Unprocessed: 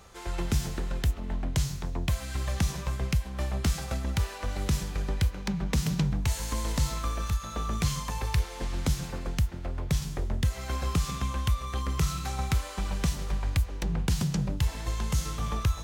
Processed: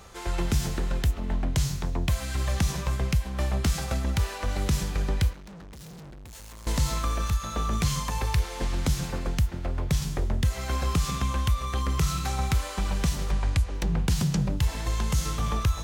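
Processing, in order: 13.31–13.75 LPF 11000 Hz 24 dB/oct; in parallel at +0.5 dB: limiter -23 dBFS, peak gain reduction 8 dB; 5.33–6.67 on the sum: tube stage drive 41 dB, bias 0.65; gain -2 dB

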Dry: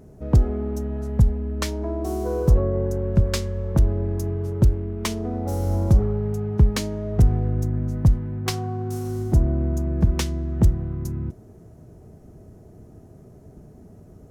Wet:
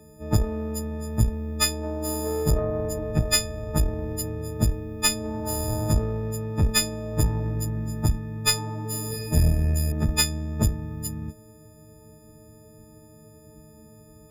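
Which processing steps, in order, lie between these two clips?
frequency quantiser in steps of 6 st; 9.09–9.92 flutter echo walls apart 4.2 m, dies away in 0.82 s; tube stage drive 10 dB, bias 0.65

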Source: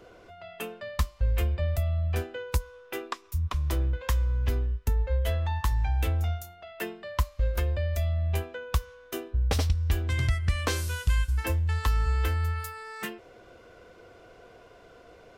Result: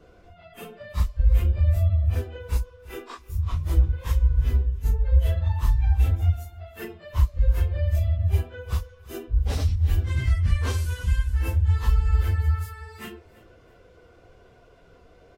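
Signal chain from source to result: phase scrambler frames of 0.1 s; low shelf 160 Hz +11.5 dB; on a send: feedback echo 0.333 s, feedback 30%, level -20.5 dB; on the sum: gain -4 dB

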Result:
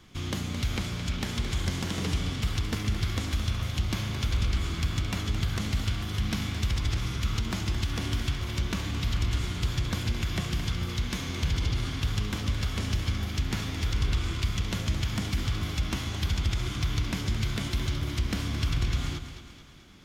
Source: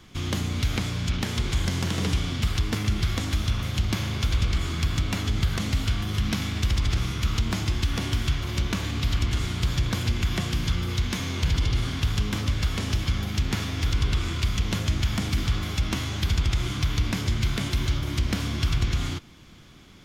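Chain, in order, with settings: split-band echo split 340 Hz, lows 0.14 s, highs 0.218 s, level -10 dB; gain -4 dB

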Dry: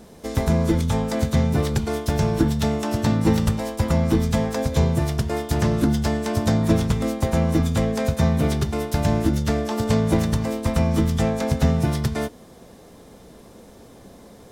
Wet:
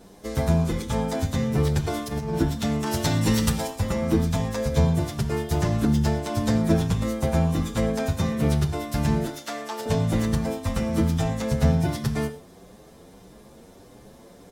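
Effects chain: 1.84–2.34 negative-ratio compressor -24 dBFS, ratio -0.5; 2.86–3.67 high shelf 2000 Hz +9.5 dB; 9.25–9.86 HPF 530 Hz 12 dB/oct; non-linear reverb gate 0.15 s flat, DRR 10.5 dB; endless flanger 8.3 ms +1.6 Hz

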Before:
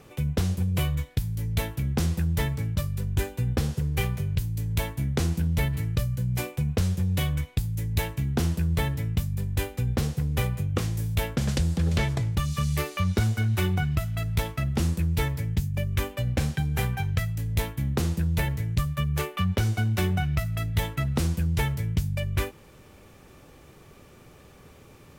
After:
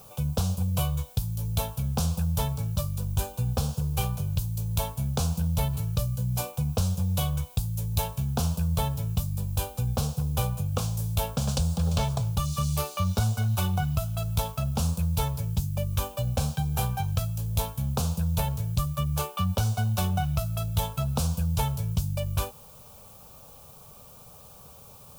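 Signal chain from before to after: low shelf 120 Hz -6.5 dB; fixed phaser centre 800 Hz, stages 4; added noise violet -56 dBFS; gain +4 dB

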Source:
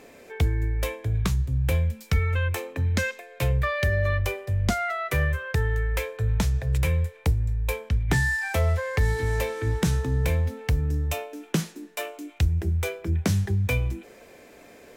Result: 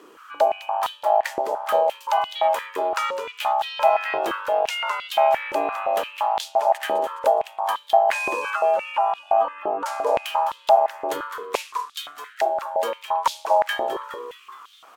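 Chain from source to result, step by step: 8.5–9.86 spectral contrast raised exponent 1.9; frequency-shifting echo 0.208 s, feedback 55%, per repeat +93 Hz, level -10 dB; ring modulator 730 Hz; stepped high-pass 5.8 Hz 370–3500 Hz

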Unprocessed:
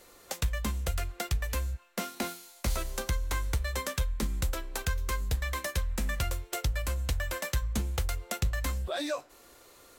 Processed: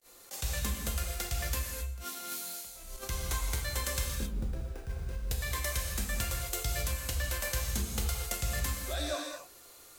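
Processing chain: 4.14–5.29 median filter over 41 samples; gate with hold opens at -47 dBFS; high shelf 3900 Hz +9 dB; 1.74–3.09 negative-ratio compressor -37 dBFS, ratio -0.5; non-linear reverb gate 0.29 s flat, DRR -1 dB; attack slew limiter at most 340 dB/s; gain -6.5 dB

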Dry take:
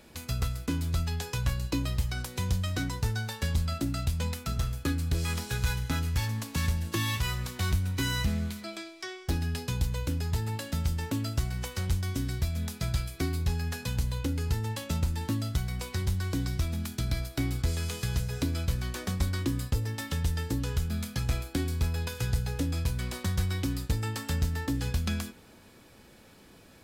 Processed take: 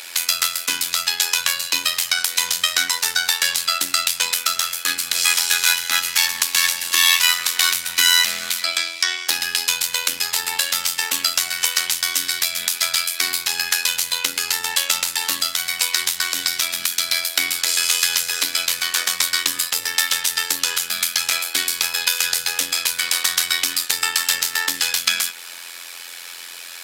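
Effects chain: Bessel high-pass 2300 Hz, order 2; in parallel at 0 dB: compressor, threshold -49 dBFS, peak gain reduction 15 dB; on the sum: AM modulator 86 Hz, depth 60%; maximiser +25 dB; gain -1 dB

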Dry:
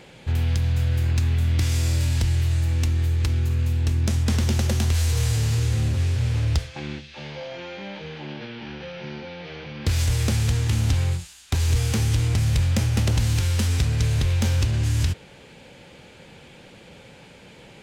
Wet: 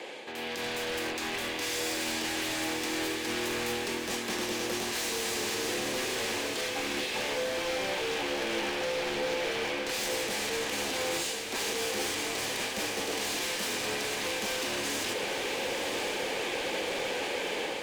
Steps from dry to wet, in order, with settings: HPF 340 Hz 24 dB/oct; high shelf 4900 Hz -6.5 dB; notch 1400 Hz, Q 8; reverse; compressor 6:1, threshold -44 dBFS, peak gain reduction 17 dB; reverse; limiter -39 dBFS, peak gain reduction 10 dB; AGC gain up to 9 dB; wavefolder -36 dBFS; frequency shift -13 Hz; on a send: diffused feedback echo 1.031 s, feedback 56%, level -5.5 dB; on the sum: gain +8 dB

